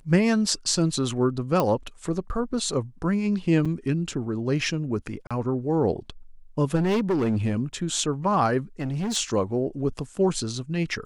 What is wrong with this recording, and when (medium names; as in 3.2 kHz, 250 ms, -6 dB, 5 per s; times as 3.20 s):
1.60 s: pop -10 dBFS
3.65–3.66 s: dropout 5.6 ms
5.27–5.31 s: dropout 36 ms
6.75–7.55 s: clipped -19.5 dBFS
8.80–9.17 s: clipped -24.5 dBFS